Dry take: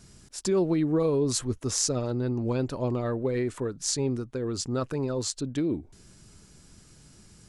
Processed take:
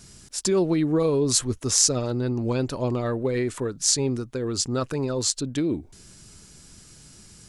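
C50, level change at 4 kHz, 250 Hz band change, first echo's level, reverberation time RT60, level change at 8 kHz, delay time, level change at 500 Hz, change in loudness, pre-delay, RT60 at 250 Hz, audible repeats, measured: no reverb, +7.5 dB, +2.5 dB, no echo, no reverb, +8.0 dB, no echo, +2.5 dB, +4.0 dB, no reverb, no reverb, no echo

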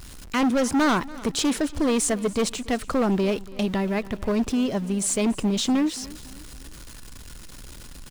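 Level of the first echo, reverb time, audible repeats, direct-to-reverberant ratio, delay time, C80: -20.0 dB, no reverb, 3, no reverb, 285 ms, no reverb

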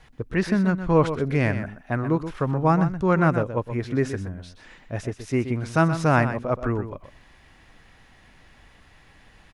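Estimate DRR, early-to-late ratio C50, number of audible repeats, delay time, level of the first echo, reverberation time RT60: no reverb, no reverb, 1, 125 ms, -10.5 dB, no reverb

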